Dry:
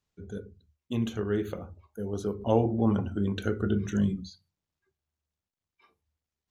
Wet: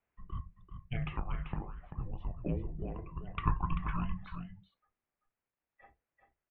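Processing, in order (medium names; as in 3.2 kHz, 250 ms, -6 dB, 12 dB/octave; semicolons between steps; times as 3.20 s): 1.19–3.37 s: compression 6:1, threshold -34 dBFS, peak gain reduction 15.5 dB; delay 389 ms -8.5 dB; mistuned SSB -380 Hz 320–2800 Hz; trim +4 dB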